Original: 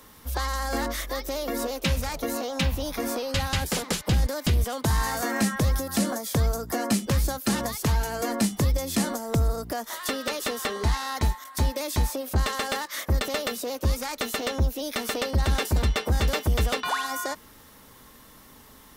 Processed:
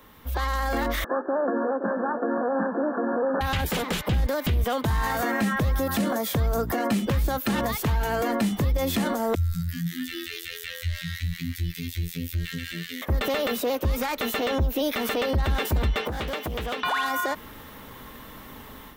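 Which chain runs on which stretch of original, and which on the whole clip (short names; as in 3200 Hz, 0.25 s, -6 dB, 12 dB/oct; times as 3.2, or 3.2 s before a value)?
1.04–3.41 CVSD 16 kbps + brick-wall FIR band-pass 190–1800 Hz + echo 0.519 s -12 dB
9.35–13.02 inverse Chebyshev band-stop 210–890 Hz, stop band 50 dB + frequency-shifting echo 0.186 s, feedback 62%, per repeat +65 Hz, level -7 dB + robotiser 84.9 Hz
16.01–16.83 HPF 180 Hz 6 dB/oct + compressor 10:1, threshold -34 dBFS + Doppler distortion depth 0.31 ms
whole clip: band shelf 7300 Hz -10 dB; AGC gain up to 9 dB; limiter -17.5 dBFS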